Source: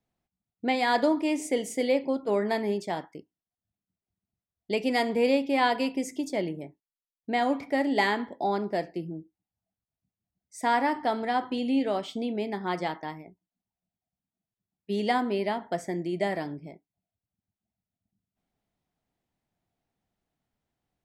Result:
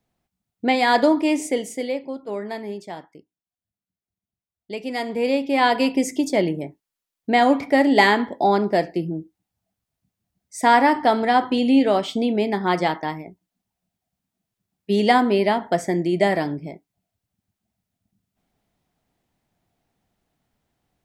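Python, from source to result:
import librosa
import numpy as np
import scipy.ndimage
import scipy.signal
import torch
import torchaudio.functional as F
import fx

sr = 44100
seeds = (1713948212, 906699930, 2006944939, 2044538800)

y = fx.gain(x, sr, db=fx.line((1.36, 7.0), (2.03, -3.0), (4.8, -3.0), (5.96, 9.5)))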